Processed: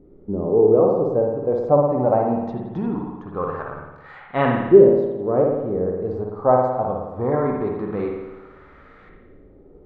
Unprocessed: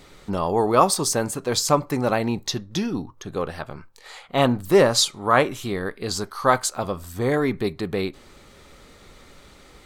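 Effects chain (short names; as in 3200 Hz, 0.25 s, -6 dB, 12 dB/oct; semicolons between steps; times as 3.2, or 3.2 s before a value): LFO low-pass saw up 0.22 Hz 350–1800 Hz; spring tank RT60 1.1 s, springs 55 ms, chirp 35 ms, DRR 1 dB; harmonic-percussive split harmonic +5 dB; gain -6 dB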